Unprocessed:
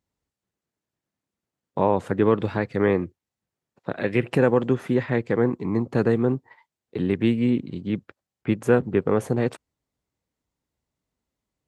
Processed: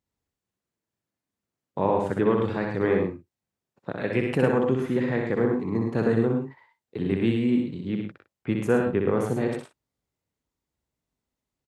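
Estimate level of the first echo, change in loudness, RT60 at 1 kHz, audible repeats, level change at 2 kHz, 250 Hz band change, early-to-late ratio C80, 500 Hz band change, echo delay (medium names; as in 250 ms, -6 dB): -4.0 dB, -1.5 dB, no reverb, 3, -1.5 dB, -1.5 dB, no reverb, -2.0 dB, 62 ms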